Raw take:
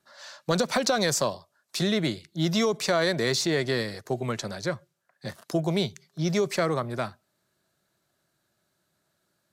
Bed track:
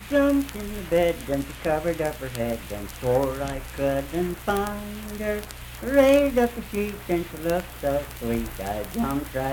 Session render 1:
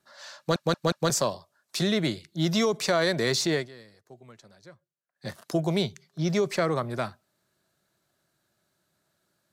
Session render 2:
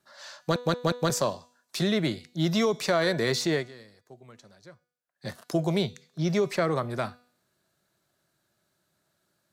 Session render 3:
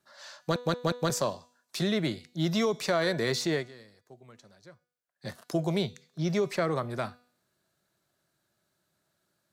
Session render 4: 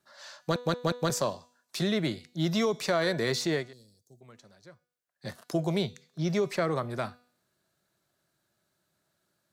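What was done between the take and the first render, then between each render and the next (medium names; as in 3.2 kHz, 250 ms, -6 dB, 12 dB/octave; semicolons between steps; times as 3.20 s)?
0.38 s: stutter in place 0.18 s, 4 plays; 3.54–5.28 s: dip -20.5 dB, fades 0.15 s; 5.82–6.76 s: treble shelf 5.4 kHz -4.5 dB
de-hum 245.2 Hz, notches 36; dynamic bell 6.6 kHz, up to -4 dB, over -41 dBFS, Q 0.78
trim -2.5 dB
3.73–4.21 s: FFT filter 150 Hz 0 dB, 630 Hz -11 dB, 1.1 kHz -23 dB, 2 kHz -28 dB, 3.1 kHz -11 dB, 6 kHz +6 dB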